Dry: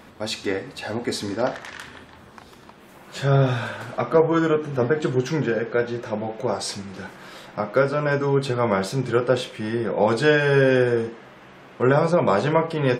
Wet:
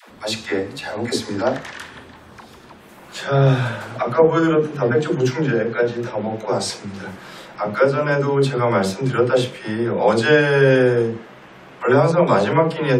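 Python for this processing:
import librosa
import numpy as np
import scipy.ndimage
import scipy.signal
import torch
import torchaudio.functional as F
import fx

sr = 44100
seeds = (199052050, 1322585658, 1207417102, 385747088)

y = fx.dispersion(x, sr, late='lows', ms=101.0, hz=420.0)
y = y * librosa.db_to_amplitude(3.5)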